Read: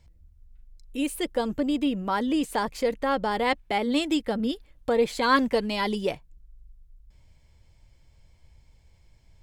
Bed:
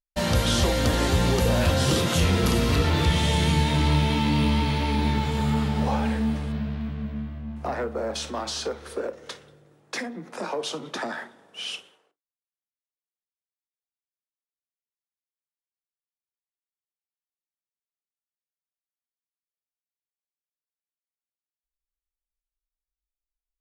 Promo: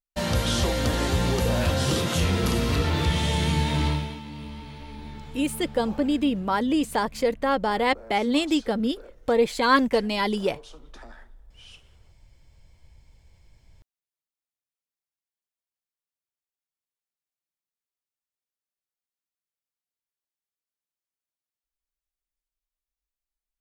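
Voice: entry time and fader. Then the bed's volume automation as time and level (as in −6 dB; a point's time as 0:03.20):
4.40 s, +2.0 dB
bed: 0:03.87 −2 dB
0:04.22 −16.5 dB
0:11.69 −16.5 dB
0:12.11 −1 dB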